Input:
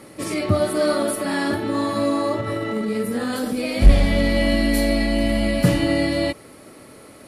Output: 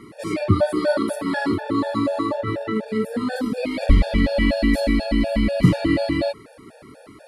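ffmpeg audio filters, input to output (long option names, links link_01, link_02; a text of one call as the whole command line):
ffmpeg -i in.wav -af "aemphasis=mode=reproduction:type=50kf,afftfilt=real='re*gt(sin(2*PI*4.1*pts/sr)*(1-2*mod(floor(b*sr/1024/470),2)),0)':imag='im*gt(sin(2*PI*4.1*pts/sr)*(1-2*mod(floor(b*sr/1024/470),2)),0)':win_size=1024:overlap=0.75,volume=3dB" out.wav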